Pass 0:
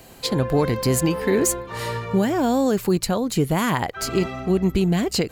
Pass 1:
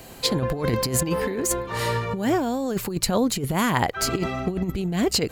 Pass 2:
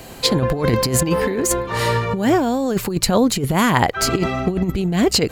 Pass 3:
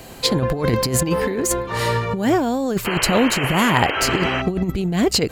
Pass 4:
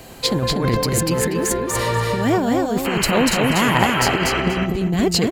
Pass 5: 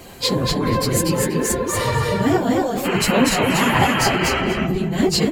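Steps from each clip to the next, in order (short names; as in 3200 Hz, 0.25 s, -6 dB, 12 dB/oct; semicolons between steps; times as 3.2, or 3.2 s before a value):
negative-ratio compressor -22 dBFS, ratio -0.5
high shelf 9200 Hz -4 dB; gain +6 dB
painted sound noise, 2.85–4.42, 270–3200 Hz -23 dBFS; gain -1.5 dB
feedback echo 0.241 s, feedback 19%, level -3 dB; gain -1 dB
phase scrambler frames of 50 ms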